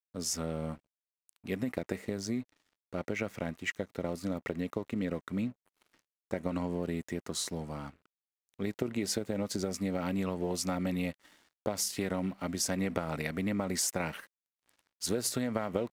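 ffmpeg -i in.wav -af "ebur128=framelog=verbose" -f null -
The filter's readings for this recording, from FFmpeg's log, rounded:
Integrated loudness:
  I:         -34.8 LUFS
  Threshold: -45.2 LUFS
Loudness range:
  LRA:         4.2 LU
  Threshold: -55.5 LUFS
  LRA low:   -37.8 LUFS
  LRA high:  -33.5 LUFS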